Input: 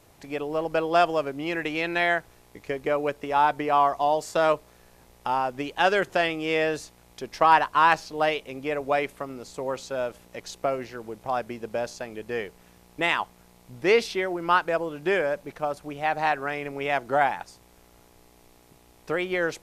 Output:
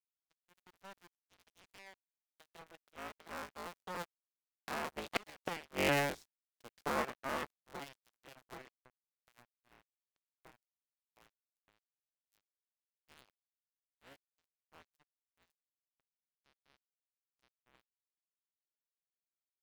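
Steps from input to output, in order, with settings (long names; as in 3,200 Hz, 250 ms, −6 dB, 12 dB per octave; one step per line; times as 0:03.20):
sub-harmonics by changed cycles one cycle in 3, inverted
source passing by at 0:05.52, 38 m/s, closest 2.8 metres
gate with flip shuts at −24 dBFS, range −25 dB
dead-zone distortion −58.5 dBFS
level +8 dB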